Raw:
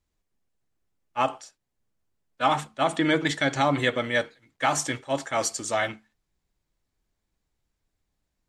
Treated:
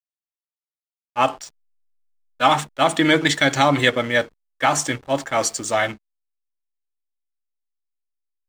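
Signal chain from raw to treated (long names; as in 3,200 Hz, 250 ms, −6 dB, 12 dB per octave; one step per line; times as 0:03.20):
0:01.22–0:03.90: high-shelf EQ 2,300 Hz +5.5 dB
slack as between gear wheels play −41 dBFS
level +5.5 dB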